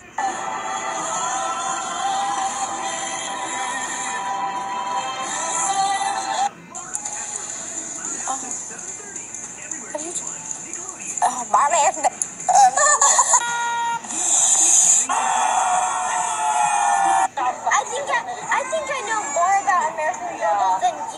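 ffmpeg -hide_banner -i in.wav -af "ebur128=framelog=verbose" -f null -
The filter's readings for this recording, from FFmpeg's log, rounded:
Integrated loudness:
  I:         -20.0 LUFS
  Threshold: -30.1 LUFS
Loudness range:
  LRA:        11.7 LU
  Threshold: -39.9 LUFS
  LRA low:   -27.0 LUFS
  LRA high:  -15.2 LUFS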